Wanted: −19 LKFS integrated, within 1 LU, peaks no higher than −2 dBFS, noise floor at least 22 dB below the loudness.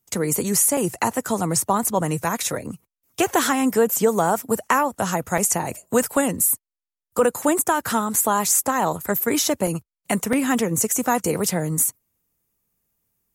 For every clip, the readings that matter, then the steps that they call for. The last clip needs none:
number of dropouts 5; longest dropout 3.0 ms; integrated loudness −21.0 LKFS; sample peak −6.5 dBFS; target loudness −19.0 LKFS
→ repair the gap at 0:00.77/0:05.38/0:08.16/0:09.67/0:10.33, 3 ms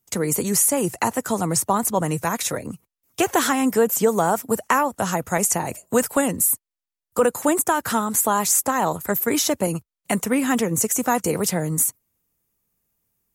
number of dropouts 0; integrated loudness −21.0 LKFS; sample peak −6.5 dBFS; target loudness −19.0 LKFS
→ level +2 dB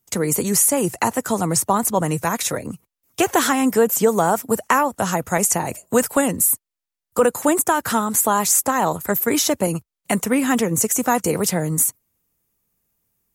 integrated loudness −19.0 LKFS; sample peak −4.5 dBFS; background noise floor −86 dBFS

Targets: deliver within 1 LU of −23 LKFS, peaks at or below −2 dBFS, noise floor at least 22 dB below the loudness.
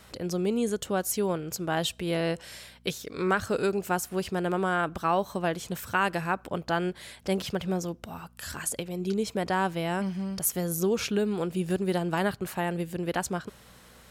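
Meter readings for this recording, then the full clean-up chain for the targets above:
mains hum 60 Hz; hum harmonics up to 240 Hz; level of the hum −57 dBFS; integrated loudness −29.5 LKFS; sample peak −12.0 dBFS; target loudness −23.0 LKFS
→ hum removal 60 Hz, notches 4
level +6.5 dB

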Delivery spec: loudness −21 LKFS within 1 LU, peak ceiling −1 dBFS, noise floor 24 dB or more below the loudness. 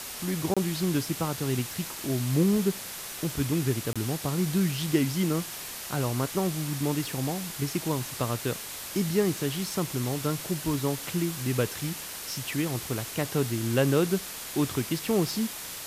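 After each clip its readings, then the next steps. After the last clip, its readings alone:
number of dropouts 2; longest dropout 26 ms; background noise floor −39 dBFS; target noise floor −53 dBFS; integrated loudness −28.5 LKFS; sample peak −11.5 dBFS; target loudness −21.0 LKFS
→ repair the gap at 0:00.54/0:03.93, 26 ms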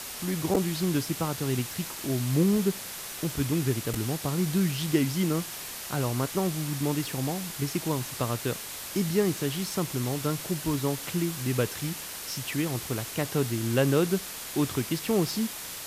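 number of dropouts 0; background noise floor −39 dBFS; target noise floor −53 dBFS
→ noise reduction from a noise print 14 dB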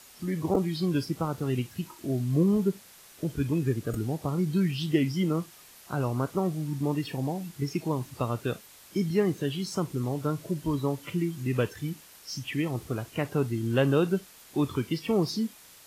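background noise floor −53 dBFS; target noise floor −54 dBFS
→ noise reduction from a noise print 6 dB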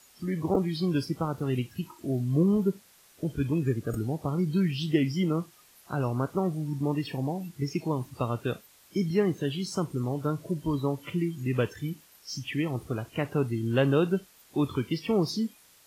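background noise floor −59 dBFS; integrated loudness −29.5 LKFS; sample peak −12.0 dBFS; target loudness −21.0 LKFS
→ level +8.5 dB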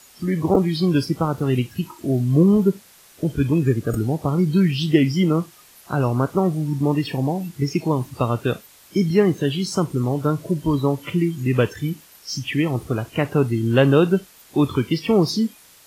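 integrated loudness −21.0 LKFS; sample peak −3.5 dBFS; background noise floor −50 dBFS

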